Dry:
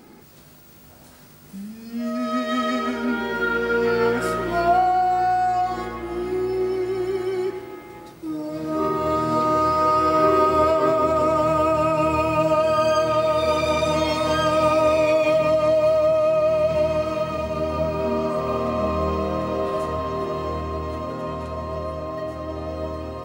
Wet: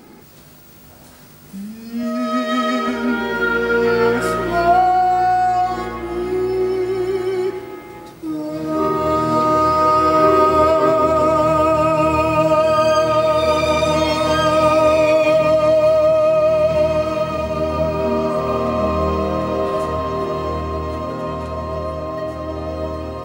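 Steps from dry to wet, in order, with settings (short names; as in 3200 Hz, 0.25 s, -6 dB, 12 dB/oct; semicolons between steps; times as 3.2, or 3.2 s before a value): 2.03–2.88 HPF 120 Hz; gain +4.5 dB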